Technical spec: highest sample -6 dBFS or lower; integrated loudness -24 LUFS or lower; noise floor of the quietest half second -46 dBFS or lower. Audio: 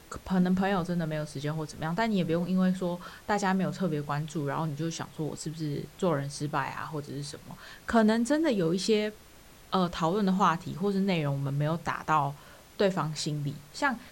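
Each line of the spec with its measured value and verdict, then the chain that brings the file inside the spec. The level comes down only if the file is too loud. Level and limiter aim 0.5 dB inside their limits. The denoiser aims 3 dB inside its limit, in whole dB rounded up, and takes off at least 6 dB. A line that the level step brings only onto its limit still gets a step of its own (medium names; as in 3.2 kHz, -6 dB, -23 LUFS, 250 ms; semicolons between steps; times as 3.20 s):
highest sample -12.0 dBFS: pass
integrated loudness -29.5 LUFS: pass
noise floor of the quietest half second -53 dBFS: pass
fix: none needed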